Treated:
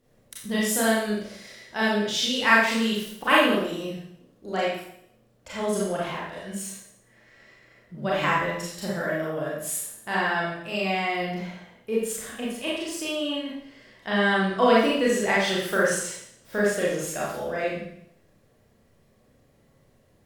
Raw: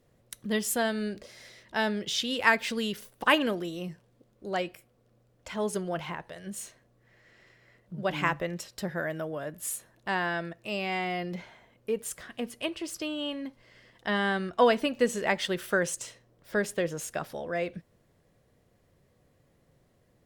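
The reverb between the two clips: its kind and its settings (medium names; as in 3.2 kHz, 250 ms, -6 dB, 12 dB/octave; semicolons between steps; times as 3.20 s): Schroeder reverb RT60 0.69 s, combs from 28 ms, DRR -6.5 dB; trim -2 dB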